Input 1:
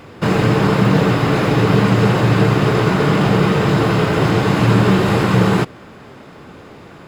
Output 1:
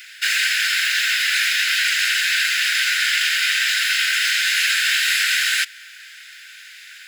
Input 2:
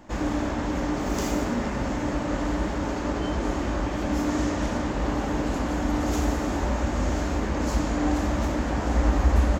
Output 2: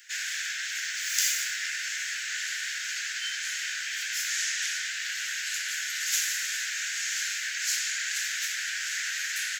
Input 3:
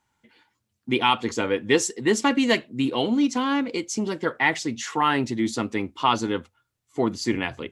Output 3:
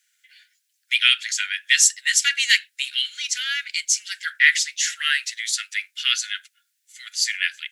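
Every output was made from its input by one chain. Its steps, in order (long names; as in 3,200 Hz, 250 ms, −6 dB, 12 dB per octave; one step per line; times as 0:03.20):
Butterworth high-pass 1,500 Hz 96 dB per octave
high-shelf EQ 3,500 Hz +8.5 dB
level +5.5 dB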